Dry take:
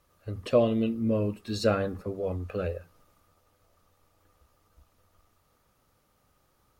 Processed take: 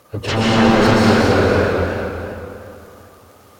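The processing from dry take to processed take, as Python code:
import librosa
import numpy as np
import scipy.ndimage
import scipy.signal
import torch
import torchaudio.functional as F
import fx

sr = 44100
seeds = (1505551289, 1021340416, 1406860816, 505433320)

p1 = scipy.signal.sosfilt(scipy.signal.butter(2, 100.0, 'highpass', fs=sr, output='sos'), x)
p2 = fx.peak_eq(p1, sr, hz=480.0, db=3.5, octaves=2.4)
p3 = fx.fold_sine(p2, sr, drive_db=19, ceiling_db=-7.0)
p4 = fx.tremolo_random(p3, sr, seeds[0], hz=3.5, depth_pct=55)
p5 = fx.stretch_vocoder_free(p4, sr, factor=0.53)
p6 = fx.dmg_crackle(p5, sr, seeds[1], per_s=12.0, level_db=-32.0)
p7 = p6 + fx.echo_alternate(p6, sr, ms=126, hz=990.0, feedback_pct=52, wet_db=-10.5, dry=0)
p8 = fx.rev_plate(p7, sr, seeds[2], rt60_s=2.7, hf_ratio=0.75, predelay_ms=110, drr_db=-6.0)
p9 = fx.echo_warbled(p8, sr, ms=229, feedback_pct=37, rate_hz=2.8, cents=156, wet_db=-7.0)
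y = p9 * 10.0 ** (-4.0 / 20.0)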